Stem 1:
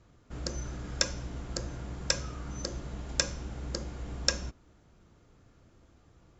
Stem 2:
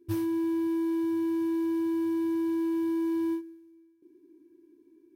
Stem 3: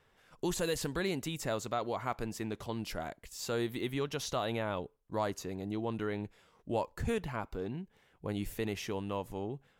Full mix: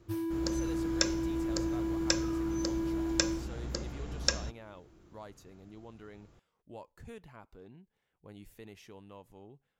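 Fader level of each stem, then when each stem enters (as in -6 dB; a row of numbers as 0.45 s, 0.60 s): -1.0 dB, -5.5 dB, -14.5 dB; 0.00 s, 0.00 s, 0.00 s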